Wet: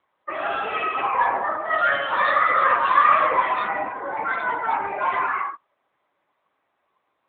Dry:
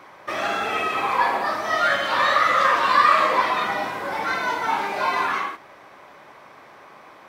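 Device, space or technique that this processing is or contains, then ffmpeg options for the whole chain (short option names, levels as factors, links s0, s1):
mobile call with aggressive noise cancelling: -af "highpass=f=120:p=1,afftdn=nr=26:nf=-29,volume=1.12" -ar 8000 -c:a libopencore_amrnb -b:a 10200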